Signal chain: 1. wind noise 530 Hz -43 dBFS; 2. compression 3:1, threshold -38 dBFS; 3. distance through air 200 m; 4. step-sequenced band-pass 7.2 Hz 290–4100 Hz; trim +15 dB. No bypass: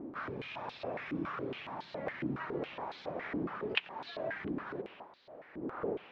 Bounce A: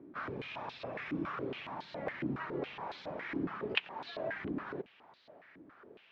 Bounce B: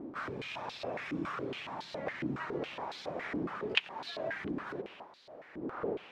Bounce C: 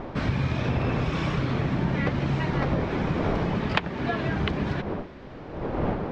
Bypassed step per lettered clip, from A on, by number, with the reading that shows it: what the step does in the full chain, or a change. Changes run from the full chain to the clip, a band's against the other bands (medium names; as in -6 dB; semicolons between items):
1, 500 Hz band -1.5 dB; 3, 4 kHz band +3.5 dB; 4, 125 Hz band +14.0 dB